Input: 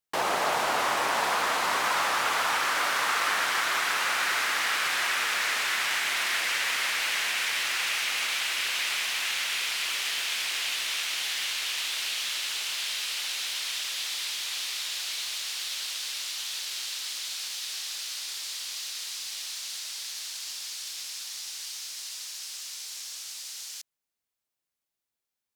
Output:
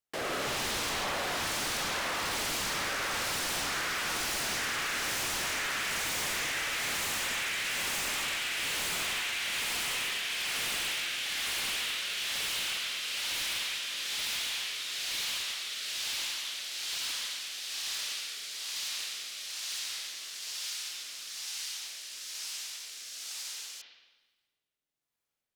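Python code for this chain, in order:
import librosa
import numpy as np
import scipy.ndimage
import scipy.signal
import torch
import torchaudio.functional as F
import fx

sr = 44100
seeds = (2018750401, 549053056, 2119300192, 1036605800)

y = fx.rotary(x, sr, hz=1.1)
y = fx.rev_spring(y, sr, rt60_s=1.2, pass_ms=(45, 52), chirp_ms=80, drr_db=-1.5)
y = 10.0 ** (-28.0 / 20.0) * (np.abs((y / 10.0 ** (-28.0 / 20.0) + 3.0) % 4.0 - 2.0) - 1.0)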